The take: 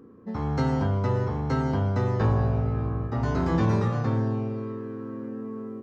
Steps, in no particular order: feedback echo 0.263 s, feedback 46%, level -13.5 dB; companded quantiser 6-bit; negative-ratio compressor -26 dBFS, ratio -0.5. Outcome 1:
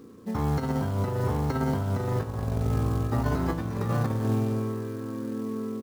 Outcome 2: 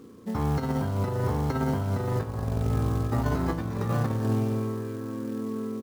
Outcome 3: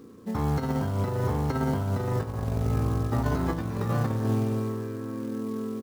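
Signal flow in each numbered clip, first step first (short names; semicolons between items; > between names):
negative-ratio compressor > companded quantiser > feedback echo; companded quantiser > negative-ratio compressor > feedback echo; negative-ratio compressor > feedback echo > companded quantiser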